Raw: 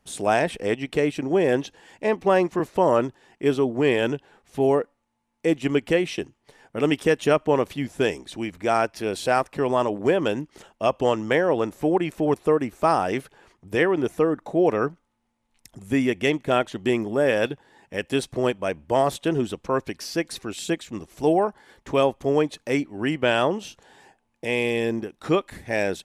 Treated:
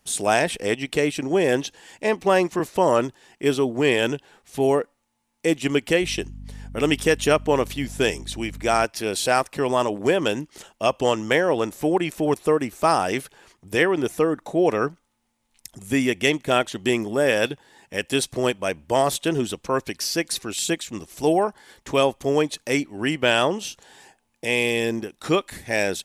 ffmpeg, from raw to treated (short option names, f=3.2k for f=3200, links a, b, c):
-filter_complex "[0:a]asettb=1/sr,asplit=3[a][b][c];[a]atrim=end=6.024[d];[b]atrim=start=6.02:end=8.85,asetpts=PTS-STARTPTS,afade=t=in:d=0.004:c=qsin,afade=t=out:st=2.826:d=0.004:c=qsin,aeval=exprs='val(0)+0.0158*(sin(2*PI*50*n/s)+sin(2*PI*2*50*n/s)/2+sin(2*PI*3*50*n/s)/3+sin(2*PI*4*50*n/s)/4+sin(2*PI*5*50*n/s)/5)':c=same[e];[c]atrim=start=8.846[f];[d][e]acrossfade=d=0.004:c1=hsin:c2=qsin[g];[g][f]acrossfade=d=0.004:c1=qsin:c2=hsin,highshelf=f=3k:g=11"